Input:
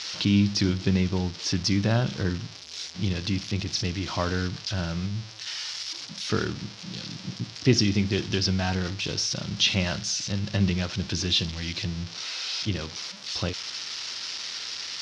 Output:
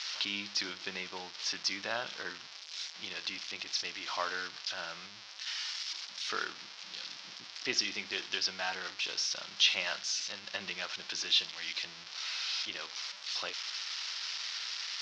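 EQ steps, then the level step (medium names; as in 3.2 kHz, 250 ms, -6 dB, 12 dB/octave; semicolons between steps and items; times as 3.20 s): high-pass 890 Hz 12 dB/octave; distance through air 80 m; -1.5 dB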